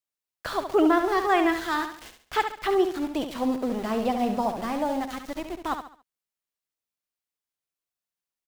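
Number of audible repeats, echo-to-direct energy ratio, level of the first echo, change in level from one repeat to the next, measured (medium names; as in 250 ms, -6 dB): 4, -7.5 dB, -8.0 dB, -9.0 dB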